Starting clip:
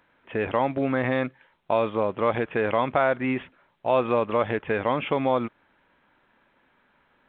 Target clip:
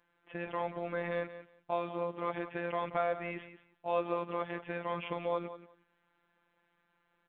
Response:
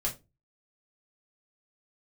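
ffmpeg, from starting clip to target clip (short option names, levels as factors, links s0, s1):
-af "aecho=1:1:180|360:0.224|0.0358,afftfilt=real='hypot(re,im)*cos(PI*b)':imag='0':win_size=1024:overlap=0.75,volume=0.422"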